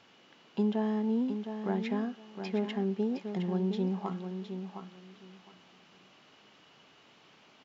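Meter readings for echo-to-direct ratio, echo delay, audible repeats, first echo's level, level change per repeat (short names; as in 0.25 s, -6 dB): -8.0 dB, 0.713 s, 2, -8.0 dB, -14.5 dB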